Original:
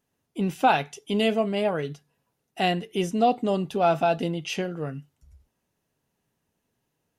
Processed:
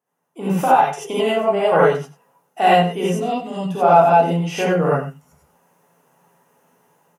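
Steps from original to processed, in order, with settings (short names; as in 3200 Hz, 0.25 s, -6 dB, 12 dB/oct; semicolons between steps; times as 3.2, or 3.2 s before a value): HPF 150 Hz 24 dB/oct; 0.63–1.72 compressor 6:1, threshold -29 dBFS, peak gain reduction 14 dB; ten-band EQ 250 Hz -5 dB, 500 Hz +4 dB, 1000 Hz +8 dB, 4000 Hz -9 dB; AGC gain up to 16.5 dB; 3.19–3.7 band shelf 660 Hz -13 dB 2.4 oct; outdoor echo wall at 16 m, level -13 dB; non-linear reverb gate 0.11 s rising, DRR -7.5 dB; gain -7.5 dB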